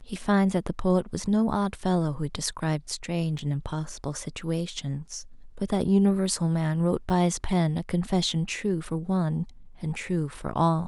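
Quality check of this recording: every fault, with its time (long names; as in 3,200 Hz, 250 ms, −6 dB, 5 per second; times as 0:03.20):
0:03.38–0:03.39: drop-out 6 ms
0:07.10: drop-out 3.7 ms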